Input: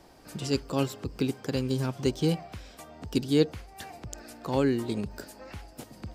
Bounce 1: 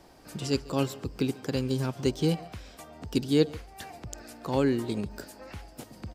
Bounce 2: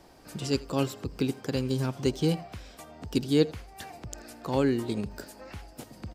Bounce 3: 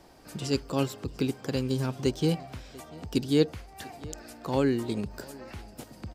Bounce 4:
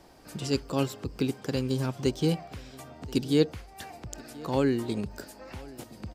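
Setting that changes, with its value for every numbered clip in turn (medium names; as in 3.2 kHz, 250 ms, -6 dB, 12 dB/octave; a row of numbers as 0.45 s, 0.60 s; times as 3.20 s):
delay, time: 142 ms, 83 ms, 693 ms, 1029 ms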